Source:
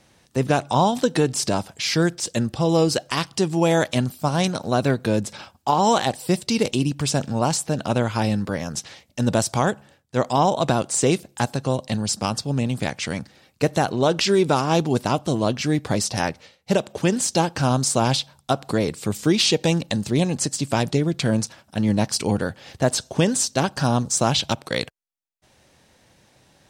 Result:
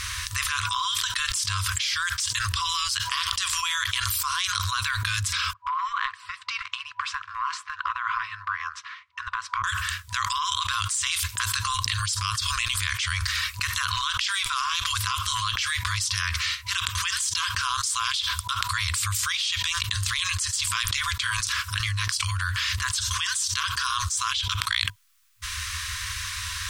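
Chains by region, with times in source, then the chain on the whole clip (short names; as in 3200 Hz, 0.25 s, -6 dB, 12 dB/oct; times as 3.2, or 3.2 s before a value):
5.53–9.64 ladder band-pass 580 Hz, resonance 70% + compressor 8:1, threshold -31 dBFS
whole clip: FFT band-reject 100–980 Hz; dynamic EQ 3300 Hz, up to +7 dB, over -47 dBFS, Q 5.4; fast leveller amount 100%; gain -11.5 dB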